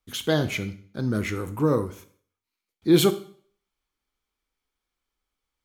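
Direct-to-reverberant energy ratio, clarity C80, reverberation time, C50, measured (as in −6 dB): 10.5 dB, 18.5 dB, 0.55 s, 15.0 dB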